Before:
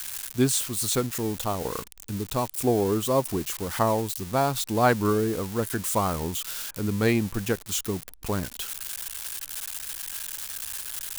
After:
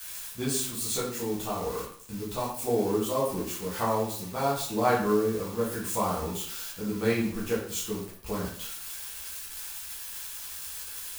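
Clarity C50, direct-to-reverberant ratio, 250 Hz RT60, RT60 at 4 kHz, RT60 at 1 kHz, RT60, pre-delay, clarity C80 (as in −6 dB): 4.0 dB, −7.5 dB, 0.55 s, 0.45 s, 0.55 s, 0.55 s, 7 ms, 8.0 dB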